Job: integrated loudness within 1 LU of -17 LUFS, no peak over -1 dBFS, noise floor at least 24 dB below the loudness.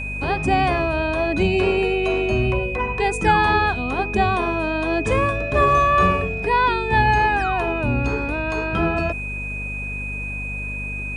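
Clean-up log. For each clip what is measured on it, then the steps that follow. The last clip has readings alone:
hum 50 Hz; harmonics up to 250 Hz; hum level -29 dBFS; steady tone 2500 Hz; tone level -28 dBFS; loudness -20.5 LUFS; peak -5.0 dBFS; loudness target -17.0 LUFS
-> de-hum 50 Hz, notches 5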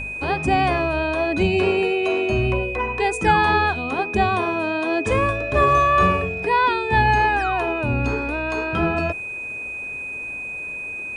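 hum none; steady tone 2500 Hz; tone level -28 dBFS
-> notch 2500 Hz, Q 30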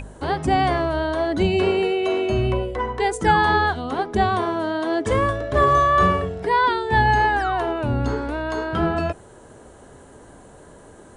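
steady tone none; loudness -20.5 LUFS; peak -6.0 dBFS; loudness target -17.0 LUFS
-> gain +3.5 dB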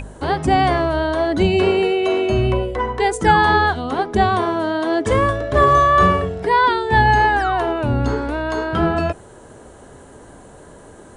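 loudness -17.0 LUFS; peak -2.5 dBFS; noise floor -43 dBFS

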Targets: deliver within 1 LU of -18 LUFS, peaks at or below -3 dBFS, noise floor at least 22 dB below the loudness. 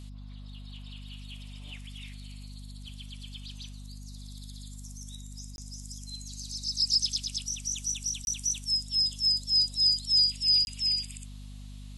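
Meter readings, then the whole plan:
dropouts 3; longest dropout 21 ms; hum 50 Hz; harmonics up to 250 Hz; hum level -41 dBFS; loudness -25.5 LUFS; peak -15.0 dBFS; loudness target -18.0 LUFS
-> interpolate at 5.56/8.25/10.65, 21 ms; de-hum 50 Hz, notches 5; gain +7.5 dB

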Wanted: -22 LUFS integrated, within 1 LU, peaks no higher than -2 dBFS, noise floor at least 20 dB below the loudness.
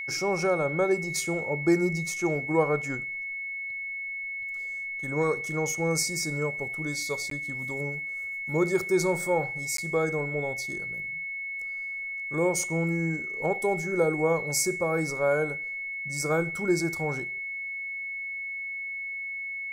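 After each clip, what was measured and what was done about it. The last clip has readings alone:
dropouts 2; longest dropout 13 ms; steady tone 2200 Hz; tone level -32 dBFS; loudness -28.5 LUFS; peak -12.0 dBFS; loudness target -22.0 LUFS
-> interpolate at 7.3/9.77, 13 ms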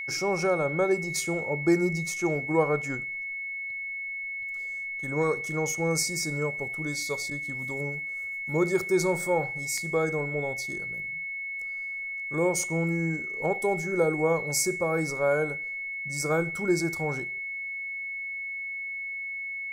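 dropouts 0; steady tone 2200 Hz; tone level -32 dBFS
-> notch 2200 Hz, Q 30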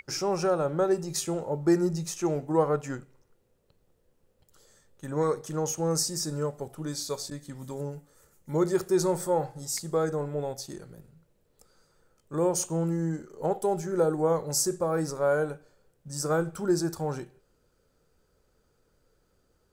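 steady tone none; loudness -29.0 LUFS; peak -12.5 dBFS; loudness target -22.0 LUFS
-> gain +7 dB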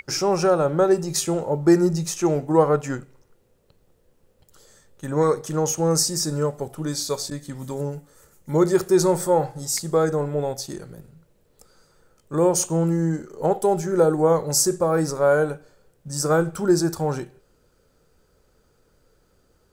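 loudness -22.0 LUFS; peak -5.5 dBFS; noise floor -63 dBFS

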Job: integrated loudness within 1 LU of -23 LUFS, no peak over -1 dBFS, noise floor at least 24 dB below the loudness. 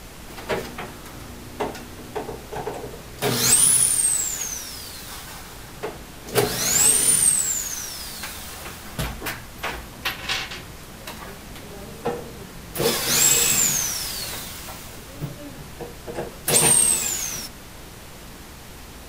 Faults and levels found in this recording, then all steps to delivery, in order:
hum 60 Hz; harmonics up to 240 Hz; hum level -47 dBFS; noise floor -41 dBFS; noise floor target -44 dBFS; loudness -19.5 LUFS; peak -4.0 dBFS; loudness target -23.0 LUFS
-> de-hum 60 Hz, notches 4; noise print and reduce 6 dB; gain -3.5 dB

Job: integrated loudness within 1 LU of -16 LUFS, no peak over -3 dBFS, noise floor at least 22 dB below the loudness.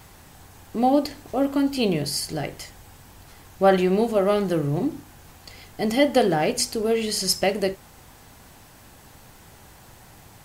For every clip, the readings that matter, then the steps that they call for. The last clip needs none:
loudness -23.0 LUFS; peak -5.0 dBFS; loudness target -16.0 LUFS
-> gain +7 dB; limiter -3 dBFS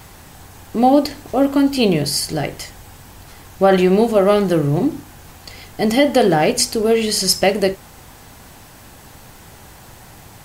loudness -16.5 LUFS; peak -3.0 dBFS; noise floor -42 dBFS

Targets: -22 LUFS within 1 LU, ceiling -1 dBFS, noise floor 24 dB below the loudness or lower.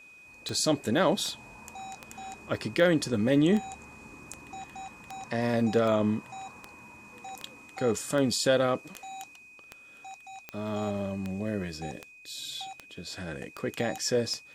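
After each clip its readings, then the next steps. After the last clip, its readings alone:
clicks 19; steady tone 2500 Hz; tone level -50 dBFS; loudness -28.5 LUFS; peak -10.0 dBFS; loudness target -22.0 LUFS
-> de-click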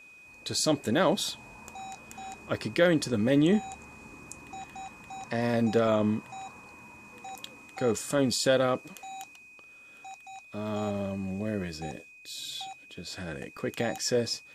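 clicks 0; steady tone 2500 Hz; tone level -50 dBFS
-> notch 2500 Hz, Q 30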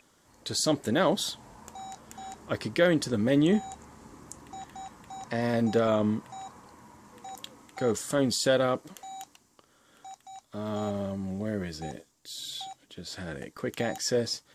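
steady tone none; loudness -28.5 LUFS; peak -10.0 dBFS; loudness target -22.0 LUFS
-> gain +6.5 dB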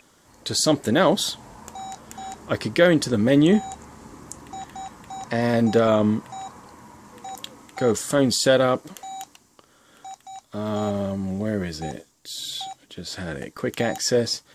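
loudness -22.0 LUFS; peak -3.5 dBFS; noise floor -59 dBFS

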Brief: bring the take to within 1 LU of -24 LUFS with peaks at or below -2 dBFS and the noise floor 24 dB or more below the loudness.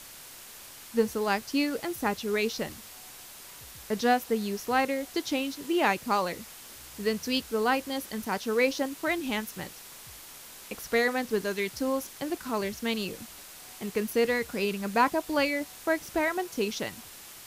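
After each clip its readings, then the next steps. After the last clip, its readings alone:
noise floor -47 dBFS; noise floor target -53 dBFS; loudness -29.0 LUFS; peak -11.0 dBFS; loudness target -24.0 LUFS
-> denoiser 6 dB, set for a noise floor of -47 dBFS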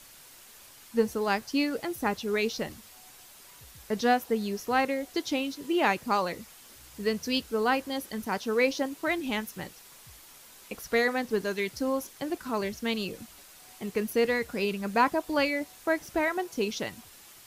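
noise floor -52 dBFS; noise floor target -54 dBFS
-> denoiser 6 dB, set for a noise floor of -52 dBFS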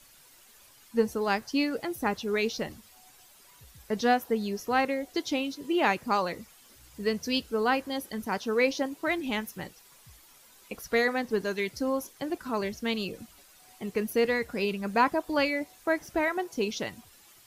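noise floor -57 dBFS; loudness -29.5 LUFS; peak -11.0 dBFS; loudness target -24.0 LUFS
-> gain +5.5 dB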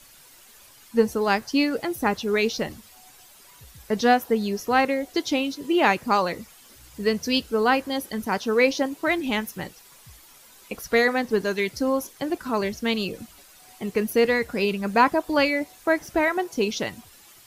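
loudness -24.0 LUFS; peak -5.5 dBFS; noise floor -51 dBFS

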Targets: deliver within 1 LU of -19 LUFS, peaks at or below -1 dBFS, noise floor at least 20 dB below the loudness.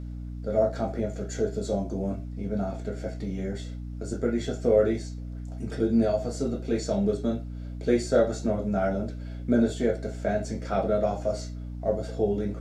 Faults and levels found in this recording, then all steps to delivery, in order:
hum 60 Hz; harmonics up to 300 Hz; hum level -34 dBFS; loudness -28.0 LUFS; peak -8.5 dBFS; loudness target -19.0 LUFS
-> notches 60/120/180/240/300 Hz; gain +9 dB; limiter -1 dBFS

